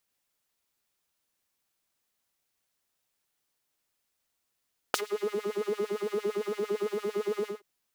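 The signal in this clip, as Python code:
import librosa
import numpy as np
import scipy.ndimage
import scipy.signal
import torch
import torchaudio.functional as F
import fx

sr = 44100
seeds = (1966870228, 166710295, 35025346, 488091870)

y = fx.sub_patch_wobble(sr, seeds[0], note=68, wave='triangle', wave2='saw', interval_st=0, level2_db=-14.5, sub_db=-15.0, noise_db=-30.0, kind='highpass', cutoff_hz=500.0, q=1.4, env_oct=2.0, env_decay_s=0.35, env_sustain_pct=20, attack_ms=1.9, decay_s=0.07, sustain_db=-22.5, release_s=0.17, note_s=2.51, lfo_hz=8.8, wobble_oct=1.8)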